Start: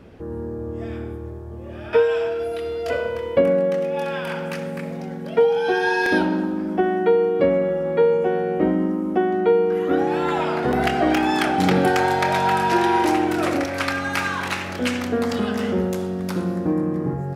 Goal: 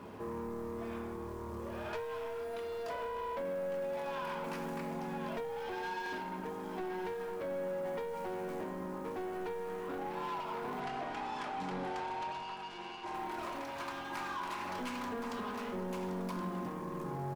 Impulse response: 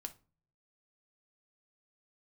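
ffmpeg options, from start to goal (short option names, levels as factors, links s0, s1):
-filter_complex "[0:a]highpass=67,lowshelf=f=110:g=-7.5,acrusher=bits=5:mode=log:mix=0:aa=0.000001,equalizer=f=1000:t=o:w=0.4:g=15,aecho=1:1:1071:0.282,acompressor=threshold=0.0282:ratio=6,asoftclip=type=tanh:threshold=0.0224,asettb=1/sr,asplit=3[s0][s1][s2];[s0]atrim=end=10.804[s3];[s1]atrim=start=10.8:end=13.14,asetpts=PTS-STARTPTS,afade=t=in:d=0.004:c=qsin,afade=t=out:st=2.336:d=0.004:c=qsin,lowpass=7700[s4];[s2]atrim=start=13.136[s5];[s3][s4]acrossfade=d=0.004:c1=hsin:c2=qsin[s6];[s6][s5]acrossfade=d=0.004:c1=qsin:c2=hsin[s7];[1:a]atrim=start_sample=2205[s8];[s7][s8]afir=irnorm=-1:irlink=0,volume=1.12"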